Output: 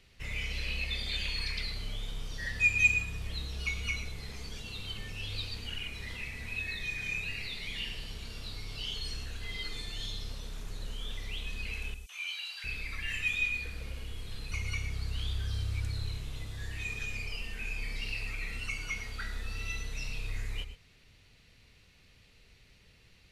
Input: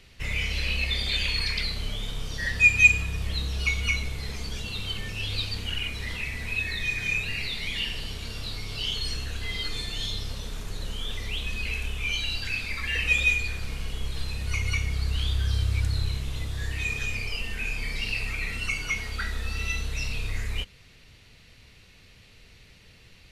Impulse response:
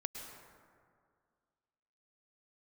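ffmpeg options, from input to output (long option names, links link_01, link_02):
-filter_complex "[0:a]asettb=1/sr,asplit=3[link_01][link_02][link_03];[link_01]atrim=end=11.944[link_04];[link_02]atrim=start=11.94:end=14.52,asetpts=PTS-STARTPTS,afade=type=in:duration=0.004:curve=qsin,afade=type=out:start_time=2.576:duration=0.004:curve=qsin,acrossover=split=810|5900[link_05][link_06][link_07];[link_06]adelay=150[link_08];[link_05]adelay=700[link_09];[link_09][link_08][link_07]amix=inputs=3:normalize=0,atrim=end_sample=113778[link_10];[link_03]atrim=start=14.516[link_11];[link_04][link_10]acrossfade=duration=0.004:curve1=hsin:curve2=qsin[link_12];[link_12][link_11]acrossfade=duration=0.004:curve1=qsin:curve2=hsin[link_13];[1:a]atrim=start_sample=2205,afade=type=out:start_time=0.17:duration=0.01,atrim=end_sample=7938[link_14];[link_13][link_14]afir=irnorm=-1:irlink=0,volume=-5.5dB"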